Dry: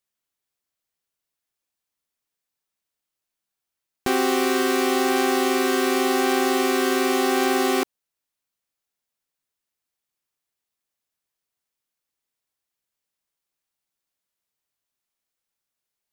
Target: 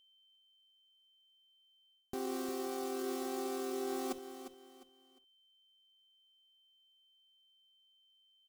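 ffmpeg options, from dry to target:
ffmpeg -i in.wav -filter_complex "[0:a]aeval=exprs='val(0)+0.00224*sin(2*PI*3100*n/s)':channel_layout=same,asplit=2[link_01][link_02];[link_02]adelay=120,highpass=300,lowpass=3400,asoftclip=type=hard:threshold=-21dB,volume=-20dB[link_03];[link_01][link_03]amix=inputs=2:normalize=0,atempo=1.9,areverse,acompressor=threshold=-29dB:ratio=6,areverse,equalizer=frequency=2100:width_type=o:width=1.7:gain=-11.5,asplit=2[link_04][link_05];[link_05]aecho=0:1:353|706|1059:0.299|0.0896|0.0269[link_06];[link_04][link_06]amix=inputs=2:normalize=0,volume=-5.5dB" out.wav

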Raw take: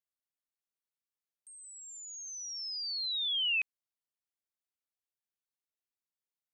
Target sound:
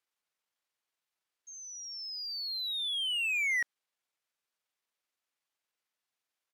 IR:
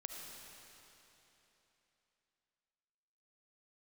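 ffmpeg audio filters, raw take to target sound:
-filter_complex "[0:a]asetrate=33038,aresample=44100,atempo=1.33484,asplit=2[link_01][link_02];[link_02]highpass=frequency=720:poles=1,volume=16dB,asoftclip=type=tanh:threshold=-25.5dB[link_03];[link_01][link_03]amix=inputs=2:normalize=0,lowpass=frequency=3500:poles=1,volume=-6dB"

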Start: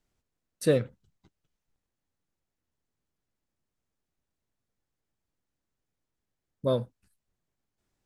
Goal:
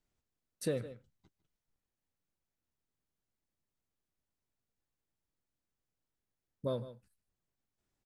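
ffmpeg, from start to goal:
ffmpeg -i in.wav -filter_complex "[0:a]asplit=2[link_01][link_02];[link_02]aecho=0:1:152:0.126[link_03];[link_01][link_03]amix=inputs=2:normalize=0,acompressor=threshold=-27dB:ratio=2.5,volume=-5.5dB" out.wav

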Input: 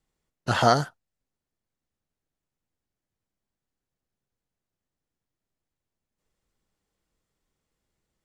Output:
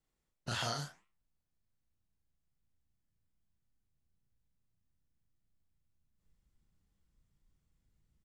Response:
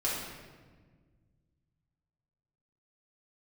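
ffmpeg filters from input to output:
-filter_complex "[0:a]asubboost=boost=5.5:cutoff=190,acrossover=split=2100[link_01][link_02];[link_01]acompressor=threshold=-33dB:ratio=6[link_03];[link_02]alimiter=limit=-23dB:level=0:latency=1:release=22[link_04];[link_03][link_04]amix=inputs=2:normalize=0,flanger=delay=6.9:depth=7:regen=-88:speed=1.9:shape=sinusoidal,asplit=2[link_05][link_06];[link_06]adelay=35,volume=-3dB[link_07];[link_05][link_07]amix=inputs=2:normalize=0,volume=-2.5dB"

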